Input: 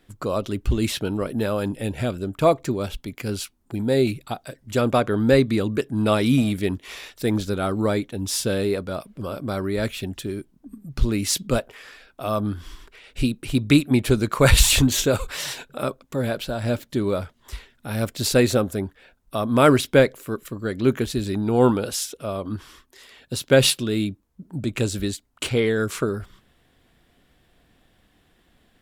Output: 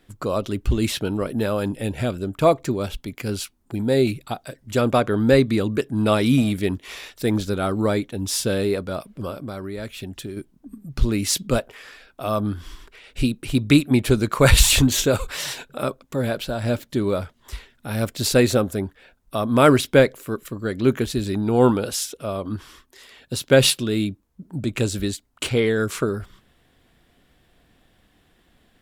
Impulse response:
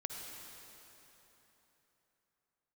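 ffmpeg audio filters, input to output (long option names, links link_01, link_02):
-filter_complex "[0:a]asettb=1/sr,asplit=3[link_01][link_02][link_03];[link_01]atrim=end=9.304[link_04];[link_02]atrim=start=9.3:end=10.37,asetpts=PTS-STARTPTS,afade=type=in:duration=0.004:curve=qsin,afade=type=out:start_time=1.066:duration=0.004:curve=qsin,acompressor=threshold=-32dB:ratio=3[link_05];[link_03]atrim=start=10.366[link_06];[link_04][link_05]acrossfade=duration=0.004:curve1=hsin:curve2=qsin[link_07];[link_07][link_06]acrossfade=duration=0.004:curve1=qsin:curve2=hsin,volume=1dB"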